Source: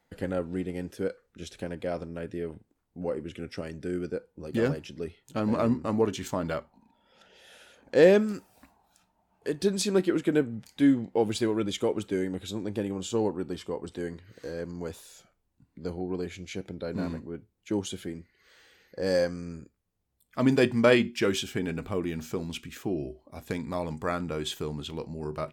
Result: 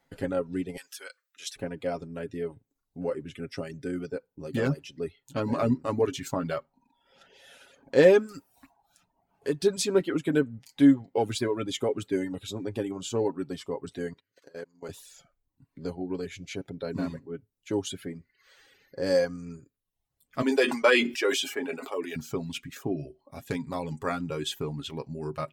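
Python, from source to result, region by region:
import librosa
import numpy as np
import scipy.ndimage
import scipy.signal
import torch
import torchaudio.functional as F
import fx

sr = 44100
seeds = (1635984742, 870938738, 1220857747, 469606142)

y = fx.chain(x, sr, fx.highpass(hz=1300.0, slope=12),
    fx.high_shelf(hz=2400.0, db=9.0), at=(0.77, 1.56))
y = fx.chain(y, sr, fx.highpass(hz=430.0, slope=6),
    fx.level_steps(step_db=19), at=(14.13, 14.89))
y = fx.chain(y, sr, fx.highpass(hz=340.0, slope=24),
    fx.doubler(ms=12.0, db=-7),
    fx.sustainer(db_per_s=68.0), at=(20.42, 22.16))
y = y + 0.54 * np.pad(y, (int(7.3 * sr / 1000.0), 0))[:len(y)]
y = fx.dereverb_blind(y, sr, rt60_s=0.66)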